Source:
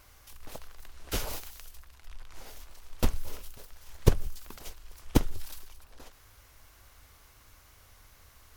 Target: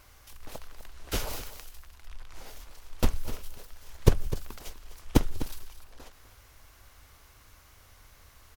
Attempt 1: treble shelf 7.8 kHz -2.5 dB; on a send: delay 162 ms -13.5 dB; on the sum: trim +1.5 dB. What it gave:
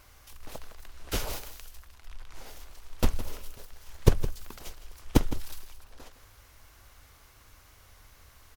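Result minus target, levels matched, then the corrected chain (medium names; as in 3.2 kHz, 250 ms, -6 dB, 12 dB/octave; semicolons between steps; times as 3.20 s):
echo 90 ms early
treble shelf 7.8 kHz -2.5 dB; on a send: delay 252 ms -13.5 dB; on the sum: trim +1.5 dB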